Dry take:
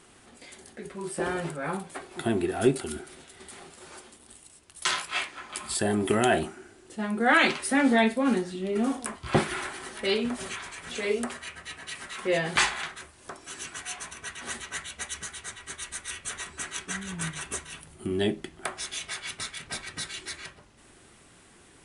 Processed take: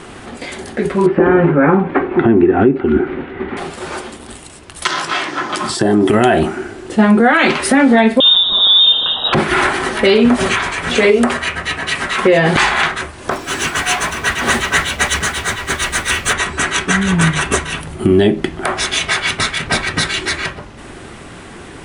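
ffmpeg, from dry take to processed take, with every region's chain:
-filter_complex "[0:a]asettb=1/sr,asplit=3[a][b][c];[a]atrim=end=1.064[d];[b]atrim=start=1.06:end=3.57,asetpts=PTS-STARTPTS,afade=t=in:d=0.004:c=qsin,afade=t=out:st=2.506:d=0.004:c=qsin,lowpass=f=2.4k:w=0.5412,lowpass=f=2.4k:w=1.3066,equalizer=f=290:w=1.4:g=8,bandreject=f=650:w=7.4[e];[c]atrim=start=3.566[f];[d][e]acrossfade=d=0.004:c1=hsin:c2=qsin[g];[g][f]acrossfade=d=0.004:c1=qsin:c2=hsin,asettb=1/sr,asplit=3[h][i][j];[h]atrim=end=4.874[k];[i]atrim=start=4.87:end=6.1,asetpts=PTS-STARTPTS,afade=t=in:d=0.004:c=qsin,afade=t=out:st=1.226:d=0.004:c=qsin,acompressor=threshold=-34dB:ratio=5:attack=3.2:release=140:knee=1:detection=peak,highpass=130,equalizer=f=130:t=q:w=4:g=8,equalizer=f=320:t=q:w=4:g=8,equalizer=f=2.4k:t=q:w=4:g=-7,equalizer=f=5.6k:t=q:w=4:g=7,lowpass=f=9.8k:w=0.5412,lowpass=f=9.8k:w=1.3066[l];[j]atrim=start=6.096[m];[k][l]acrossfade=d=0.004:c1=hsin:c2=qsin[n];[n][m]acrossfade=d=0.004:c1=qsin:c2=hsin,asettb=1/sr,asplit=3[o][p][q];[o]atrim=end=8.204[r];[p]atrim=start=8.2:end=9.33,asetpts=PTS-STARTPTS,afade=t=in:d=0.004:c=qsin,afade=t=out:st=1.126:d=0.004:c=qsin,aeval=exprs='val(0)+0.5*0.0237*sgn(val(0))':c=same,asuperstop=centerf=1600:order=4:qfactor=0.7,lowpass=f=3.3k:t=q:w=0.5098,lowpass=f=3.3k:t=q:w=0.6013,lowpass=f=3.3k:t=q:w=0.9,lowpass=f=3.3k:t=q:w=2.563,afreqshift=-3900[s];[q]atrim=start=9.326[t];[r][s]acrossfade=d=0.004:c1=hsin:c2=qsin[u];[u][t]acrossfade=d=0.004:c1=qsin:c2=hsin,asettb=1/sr,asplit=3[v][w][x];[v]atrim=end=13.304[y];[w]atrim=start=13.3:end=16.33,asetpts=PTS-STARTPTS,afade=t=in:d=0.004:c=qsin,afade=t=out:st=3.026:d=0.004:c=qsin,aeval=exprs='val(0)+0.5*0.0188*sgn(val(0))':c=same,agate=range=-33dB:threshold=-32dB:ratio=3:release=100:detection=peak[z];[x]atrim=start=16.326[aa];[y][z]acrossfade=d=0.004:c1=hsin:c2=qsin[ab];[ab][aa]acrossfade=d=0.004:c1=qsin:c2=hsin,lowpass=f=2.3k:p=1,acompressor=threshold=-29dB:ratio=6,alimiter=level_in=24.5dB:limit=-1dB:release=50:level=0:latency=1,volume=-1dB"

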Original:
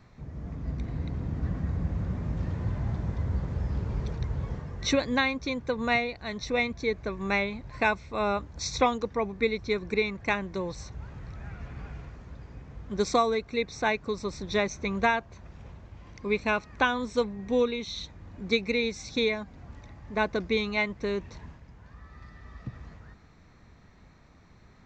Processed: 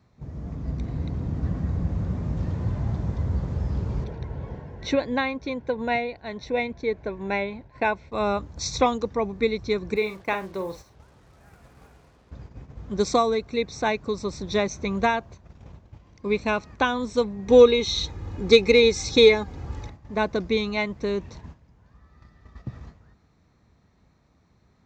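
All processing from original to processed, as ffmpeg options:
-filter_complex "[0:a]asettb=1/sr,asplit=3[a][b][c];[a]atrim=end=4.044[d];[b]atrim=start=4.04:end=8.12,asetpts=PTS-STARTPTS,afade=t=in:d=0.004:c=qsin,afade=t=out:st=4.076:d=0.004:c=qsin,asuperstop=centerf=1200:order=4:qfactor=6.1,bass=f=250:g=-6,treble=f=4k:g=-14[e];[c]atrim=start=8.116[f];[d][e]acrossfade=d=0.004:c1=hsin:c2=qsin[g];[g][f]acrossfade=d=0.004:c1=qsin:c2=hsin,asettb=1/sr,asplit=3[h][i][j];[h]atrim=end=9.964[k];[i]atrim=start=9.96:end=12.31,asetpts=PTS-STARTPTS,afade=t=in:d=0.004:c=qsin,afade=t=out:st=2.346:d=0.004:c=qsin,bass=f=250:g=-10,treble=f=4k:g=-11,acrusher=bits=8:mix=0:aa=0.5,asplit=2[l][m];[m]adelay=47,volume=-9.5dB[n];[l][n]amix=inputs=2:normalize=0,atrim=end_sample=103635[o];[j]atrim=start=12.306[p];[k][o]acrossfade=d=0.004:c1=hsin:c2=qsin[q];[q][p]acrossfade=d=0.004:c1=qsin:c2=hsin,asettb=1/sr,asplit=3[r][s][t];[r]atrim=end=17.484[u];[s]atrim=start=17.48:end=19.9,asetpts=PTS-STARTPTS,afade=t=in:d=0.004:c=qsin,afade=t=out:st=2.416:d=0.004:c=qsin,bandreject=f=690:w=15,aecho=1:1:2.4:0.46,atrim=end_sample=106722,acontrast=85[v];[t]atrim=start=19.896[w];[u][v]acrossfade=d=0.004:c1=hsin:c2=qsin[x];[x][w]acrossfade=d=0.004:c1=qsin:c2=hsin,agate=range=-9dB:threshold=-44dB:ratio=16:detection=peak,highpass=44,equalizer=f=1.9k:t=o:w=1.4:g=-5,volume=4dB"

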